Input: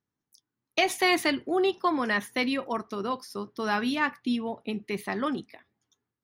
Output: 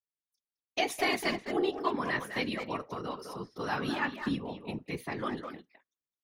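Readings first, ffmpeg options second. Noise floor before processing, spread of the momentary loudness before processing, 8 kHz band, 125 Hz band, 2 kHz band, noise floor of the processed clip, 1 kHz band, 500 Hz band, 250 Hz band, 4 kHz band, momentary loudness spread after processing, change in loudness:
under -85 dBFS, 10 LU, -6.0 dB, +2.5 dB, -5.5 dB, under -85 dBFS, -5.0 dB, -5.0 dB, -6.0 dB, -5.5 dB, 11 LU, -5.5 dB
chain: -filter_complex "[0:a]agate=range=-19dB:threshold=-49dB:ratio=16:detection=peak,asplit=2[a][b];[b]adelay=210,highpass=300,lowpass=3.4k,asoftclip=type=hard:threshold=-21dB,volume=-6dB[c];[a][c]amix=inputs=2:normalize=0,afftfilt=real='hypot(re,im)*cos(2*PI*random(0))':imag='hypot(re,im)*sin(2*PI*random(1))':win_size=512:overlap=0.75"

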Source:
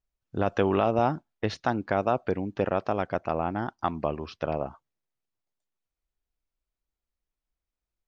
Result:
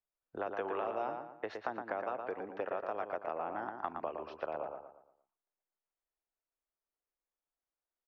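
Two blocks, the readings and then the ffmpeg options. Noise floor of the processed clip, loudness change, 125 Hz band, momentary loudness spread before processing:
under -85 dBFS, -11.0 dB, -26.5 dB, 8 LU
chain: -filter_complex "[0:a]acrossover=split=320 2100:gain=0.112 1 0.158[a][b][c];[a][b][c]amix=inputs=3:normalize=0,acrossover=split=470|1800[d][e][f];[d]acompressor=threshold=-44dB:ratio=4[g];[e]acompressor=threshold=-35dB:ratio=4[h];[f]acompressor=threshold=-47dB:ratio=4[i];[g][h][i]amix=inputs=3:normalize=0,asplit=2[j][k];[k]adelay=116,lowpass=f=2.8k:p=1,volume=-5dB,asplit=2[l][m];[m]adelay=116,lowpass=f=2.8k:p=1,volume=0.4,asplit=2[n][o];[o]adelay=116,lowpass=f=2.8k:p=1,volume=0.4,asplit=2[p][q];[q]adelay=116,lowpass=f=2.8k:p=1,volume=0.4,asplit=2[r][s];[s]adelay=116,lowpass=f=2.8k:p=1,volume=0.4[t];[l][n][p][r][t]amix=inputs=5:normalize=0[u];[j][u]amix=inputs=2:normalize=0,volume=-2.5dB"

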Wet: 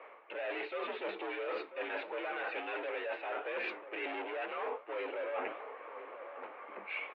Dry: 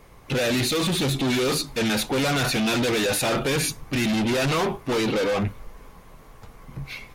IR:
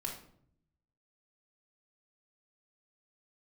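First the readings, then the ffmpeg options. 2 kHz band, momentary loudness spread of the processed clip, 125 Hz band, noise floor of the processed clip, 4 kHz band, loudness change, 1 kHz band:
-11.0 dB, 9 LU, under -40 dB, -54 dBFS, -23.5 dB, -16.5 dB, -10.5 dB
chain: -filter_complex "[0:a]highpass=f=370:t=q:w=0.5412,highpass=f=370:t=q:w=1.307,lowpass=f=2.6k:t=q:w=0.5176,lowpass=f=2.6k:t=q:w=0.7071,lowpass=f=2.6k:t=q:w=1.932,afreqshift=60,flanger=delay=6.1:depth=3.8:regen=-88:speed=1.4:shape=sinusoidal,areverse,acompressor=threshold=-43dB:ratio=16,areverse,asplit=2[a][b];[b]adelay=991.3,volume=-11dB,highshelf=f=4k:g=-22.3[c];[a][c]amix=inputs=2:normalize=0,volume=7.5dB"

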